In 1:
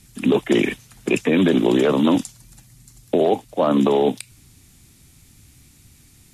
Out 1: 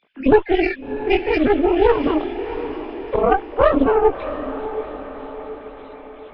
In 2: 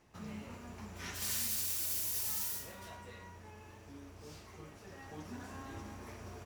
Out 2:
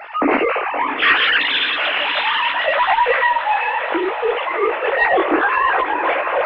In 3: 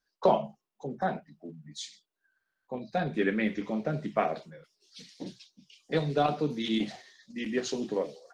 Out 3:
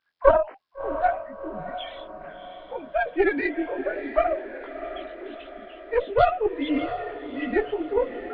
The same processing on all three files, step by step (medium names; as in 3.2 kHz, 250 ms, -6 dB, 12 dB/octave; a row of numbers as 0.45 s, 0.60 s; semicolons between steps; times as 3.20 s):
formants replaced by sine waves; high-pass 340 Hz 12 dB/octave; reverse; upward compressor, threshold -41 dBFS; reverse; chorus voices 2, 0.69 Hz, delay 19 ms, depth 4.9 ms; Chebyshev shaper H 4 -11 dB, 5 -44 dB, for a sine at -9.5 dBFS; on a send: echo that smears into a reverb 680 ms, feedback 53%, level -11 dB; on the sum: Nellymoser 22 kbps 11.025 kHz; peak normalisation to -2 dBFS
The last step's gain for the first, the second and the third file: +6.0 dB, +27.5 dB, +9.5 dB